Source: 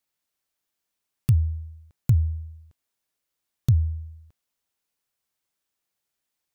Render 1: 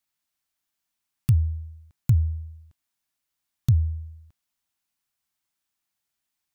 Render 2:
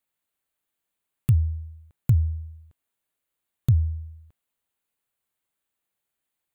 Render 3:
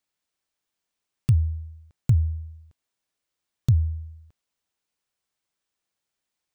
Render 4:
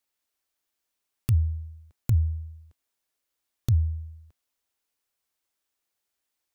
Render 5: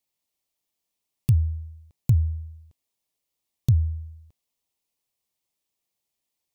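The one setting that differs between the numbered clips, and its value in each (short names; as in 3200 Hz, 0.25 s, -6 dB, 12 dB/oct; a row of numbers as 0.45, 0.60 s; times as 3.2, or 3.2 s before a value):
bell, frequency: 470, 5400, 14000, 150, 1500 Hz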